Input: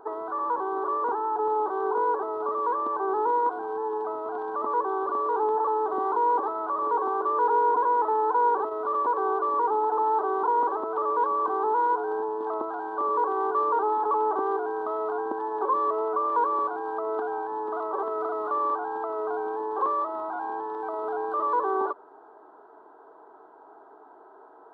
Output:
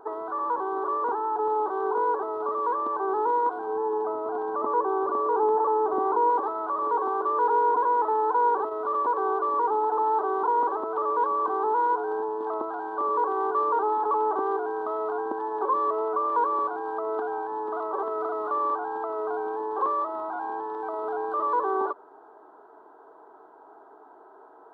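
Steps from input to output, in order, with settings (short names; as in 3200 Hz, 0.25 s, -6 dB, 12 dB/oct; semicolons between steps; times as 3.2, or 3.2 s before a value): 3.67–6.3 tilt shelf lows +4 dB, about 1200 Hz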